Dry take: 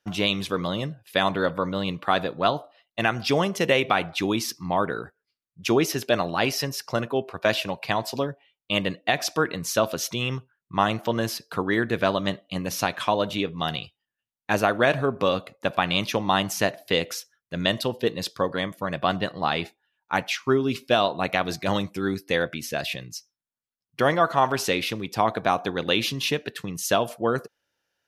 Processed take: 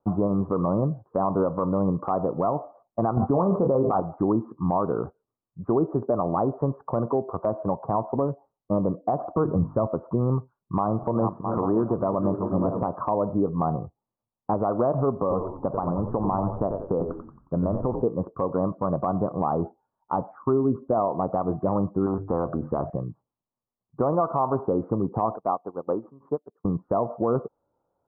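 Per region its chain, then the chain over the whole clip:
0:03.17–0:04.00: double-tracking delay 22 ms −8.5 dB + envelope flattener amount 70%
0:09.35–0:09.87: mu-law and A-law mismatch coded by mu + parametric band 69 Hz +12 dB 2.5 octaves + mains-hum notches 50/100/150/200/250/300 Hz
0:10.37–0:12.88: feedback delay that plays each chunk backwards 332 ms, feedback 48%, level −12 dB + single-tap delay 830 ms −14.5 dB
0:15.20–0:18.02: downward compressor 2.5 to 1, threshold −29 dBFS + echo with shifted repeats 90 ms, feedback 42%, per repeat −90 Hz, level −8 dB
0:22.06–0:22.90: mains-hum notches 50/100/150 Hz + every bin compressed towards the loudest bin 2 to 1
0:25.36–0:26.65: high-pass filter 330 Hz 6 dB per octave + expander for the loud parts 2.5 to 1, over −43 dBFS
whole clip: Butterworth low-pass 1,200 Hz 72 dB per octave; downward compressor 2.5 to 1, threshold −29 dBFS; brickwall limiter −22.5 dBFS; level +9 dB

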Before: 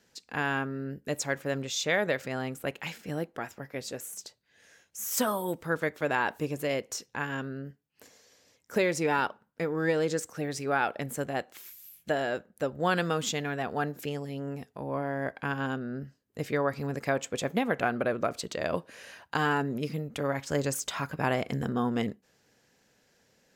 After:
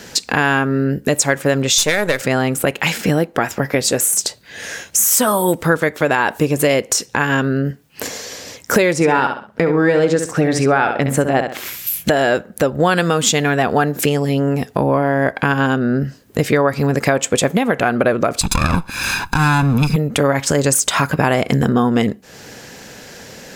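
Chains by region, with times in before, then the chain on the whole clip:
0:01.78–0:02.21: gain on one half-wave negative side −7 dB + high-shelf EQ 5,900 Hz +8.5 dB + notch filter 680 Hz
0:08.93–0:11.87: low-pass filter 2,700 Hz 6 dB per octave + repeating echo 66 ms, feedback 23%, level −8.5 dB
0:18.41–0:19.96: lower of the sound and its delayed copy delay 1.2 ms + comb filter 0.8 ms, depth 76%
whole clip: dynamic equaliser 9,000 Hz, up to +7 dB, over −56 dBFS, Q 1.8; downward compressor 4 to 1, threshold −45 dBFS; boost into a limiter +32 dB; level −2 dB

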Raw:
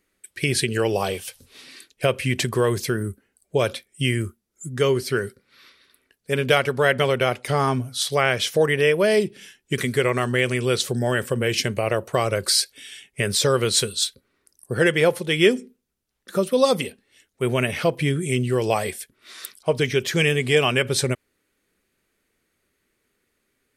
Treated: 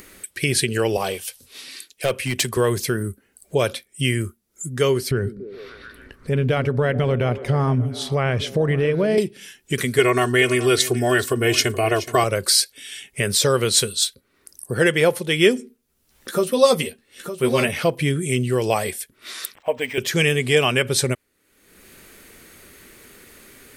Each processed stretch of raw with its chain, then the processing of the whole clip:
0:00.97–0:02.57: low-shelf EQ 280 Hz −4.5 dB + hard clipping −16.5 dBFS + multiband upward and downward expander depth 40%
0:05.11–0:09.18: RIAA equalisation playback + downward compressor 2 to 1, threshold −21 dBFS + echo through a band-pass that steps 140 ms, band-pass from 230 Hz, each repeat 0.7 octaves, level −8 dB
0:09.98–0:12.24: comb filter 2.8 ms, depth 98% + single-tap delay 425 ms −15 dB
0:15.58–0:17.69: double-tracking delay 13 ms −5 dB + single-tap delay 911 ms −11.5 dB
0:19.55–0:19.98: low shelf with overshoot 210 Hz −10.5 dB, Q 3 + phaser with its sweep stopped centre 1,300 Hz, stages 6 + linearly interpolated sample-rate reduction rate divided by 4×
whole clip: high-shelf EQ 8,900 Hz +6 dB; upward compression, threshold −28 dBFS; level +1 dB

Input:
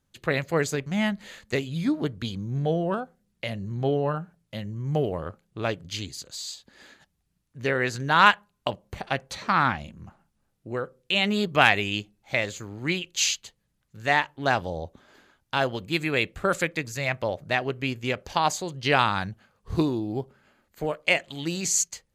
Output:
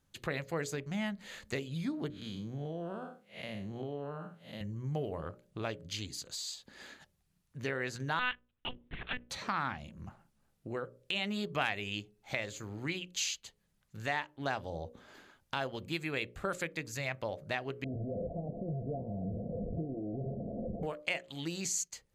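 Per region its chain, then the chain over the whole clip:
0:02.10–0:04.61: spectrum smeared in time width 166 ms + high-pass filter 150 Hz + downward compressor 2 to 1, threshold −32 dBFS
0:08.19–0:09.30: drawn EQ curve 270 Hz 0 dB, 660 Hz −15 dB, 1,800 Hz +2 dB + one-pitch LPC vocoder at 8 kHz 250 Hz
0:17.84–0:20.83: linear delta modulator 16 kbit/s, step −17.5 dBFS + Chebyshev low-pass with heavy ripple 710 Hz, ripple 9 dB
whole clip: mains-hum notches 60/120/180/240/300/360/420/480/540/600 Hz; downward compressor 2 to 1, threshold −41 dBFS

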